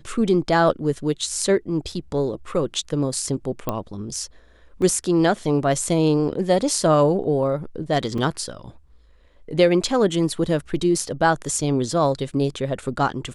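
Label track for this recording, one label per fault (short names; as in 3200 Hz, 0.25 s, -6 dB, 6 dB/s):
1.920000	1.920000	gap 3.6 ms
3.690000	3.690000	pop -10 dBFS
4.820000	4.820000	gap 2.3 ms
8.180000	8.180000	gap 3.5 ms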